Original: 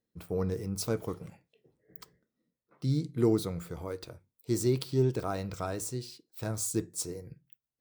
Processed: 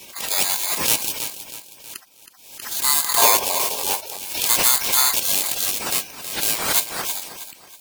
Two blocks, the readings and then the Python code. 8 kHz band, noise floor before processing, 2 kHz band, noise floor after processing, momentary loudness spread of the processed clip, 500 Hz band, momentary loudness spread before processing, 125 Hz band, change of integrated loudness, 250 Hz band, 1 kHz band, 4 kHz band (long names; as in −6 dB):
+20.0 dB, below −85 dBFS, +22.0 dB, −48 dBFS, 21 LU, +0.5 dB, 20 LU, −12.0 dB, +14.0 dB, −7.0 dB, +18.0 dB, +23.5 dB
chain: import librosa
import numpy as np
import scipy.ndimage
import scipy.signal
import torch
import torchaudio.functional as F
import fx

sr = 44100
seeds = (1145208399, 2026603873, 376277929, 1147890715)

p1 = fx.bit_reversed(x, sr, seeds[0], block=16)
p2 = fx.high_shelf(p1, sr, hz=2400.0, db=11.5)
p3 = p2 + fx.echo_feedback(p2, sr, ms=320, feedback_pct=36, wet_db=-11.0, dry=0)
p4 = p3 * np.sin(2.0 * np.pi * 1600.0 * np.arange(len(p3)) / sr)
p5 = fx.spec_gate(p4, sr, threshold_db=-20, keep='weak')
p6 = fx.fold_sine(p5, sr, drive_db=17, ceiling_db=-7.0)
p7 = fx.spec_box(p6, sr, start_s=3.18, length_s=1.0, low_hz=380.0, high_hz=1200.0, gain_db=9)
p8 = fx.low_shelf(p7, sr, hz=150.0, db=-9.0)
p9 = fx.pre_swell(p8, sr, db_per_s=67.0)
y = F.gain(torch.from_numpy(p9), 2.0).numpy()